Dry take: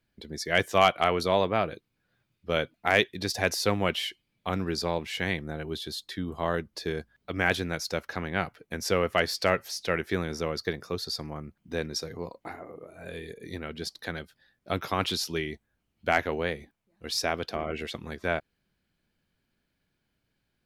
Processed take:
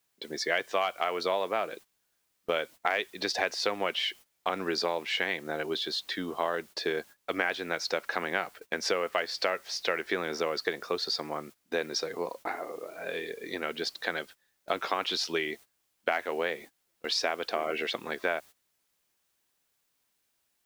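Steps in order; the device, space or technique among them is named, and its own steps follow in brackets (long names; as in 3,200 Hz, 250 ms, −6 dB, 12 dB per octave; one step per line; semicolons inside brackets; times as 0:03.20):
baby monitor (band-pass filter 410–4,400 Hz; downward compressor 8 to 1, threshold −32 dBFS, peak gain reduction 16.5 dB; white noise bed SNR 26 dB; noise gate −53 dBFS, range −17 dB)
level +7 dB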